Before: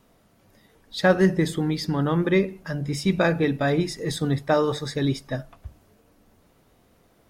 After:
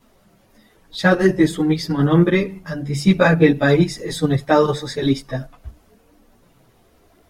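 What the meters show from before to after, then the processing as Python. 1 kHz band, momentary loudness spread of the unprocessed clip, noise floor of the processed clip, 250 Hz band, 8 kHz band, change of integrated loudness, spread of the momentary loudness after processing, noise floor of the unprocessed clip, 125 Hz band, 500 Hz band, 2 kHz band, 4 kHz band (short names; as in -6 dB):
+5.5 dB, 9 LU, -56 dBFS, +6.5 dB, +3.5 dB, +6.0 dB, 12 LU, -61 dBFS, +6.0 dB, +5.5 dB, +6.5 dB, +4.0 dB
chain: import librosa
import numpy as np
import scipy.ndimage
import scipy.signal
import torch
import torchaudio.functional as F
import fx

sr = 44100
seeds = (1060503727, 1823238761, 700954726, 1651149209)

p1 = fx.level_steps(x, sr, step_db=23)
p2 = x + F.gain(torch.from_numpy(p1), 0.0).numpy()
p3 = fx.chorus_voices(p2, sr, voices=4, hz=0.4, base_ms=13, depth_ms=4.1, mix_pct=65)
y = F.gain(torch.from_numpy(p3), 4.5).numpy()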